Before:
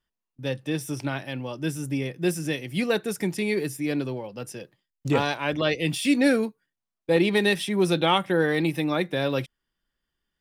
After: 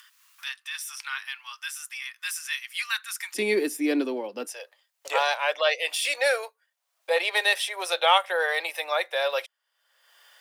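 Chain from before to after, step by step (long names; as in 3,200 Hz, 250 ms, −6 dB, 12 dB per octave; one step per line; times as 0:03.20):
Butterworth high-pass 1,100 Hz 48 dB per octave, from 0:03.34 240 Hz, from 0:04.46 530 Hz
upward compression, threshold −37 dBFS
level +3 dB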